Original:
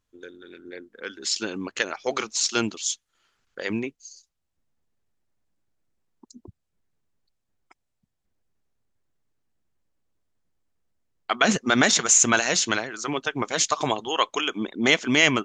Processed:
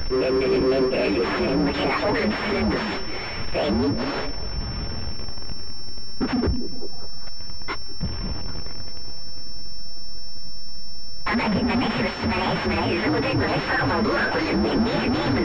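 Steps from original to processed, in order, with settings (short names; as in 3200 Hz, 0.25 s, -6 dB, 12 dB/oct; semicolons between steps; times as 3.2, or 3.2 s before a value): inharmonic rescaling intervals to 128%; in parallel at -11.5 dB: sine folder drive 17 dB, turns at -10 dBFS; on the sum: power-law curve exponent 0.35; low shelf 150 Hz +9.5 dB; limiter -16.5 dBFS, peak gain reduction 11.5 dB; on a send: delay with a stepping band-pass 0.197 s, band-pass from 260 Hz, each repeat 0.7 oct, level -7 dB; on the sum: pulse-width modulation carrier 5400 Hz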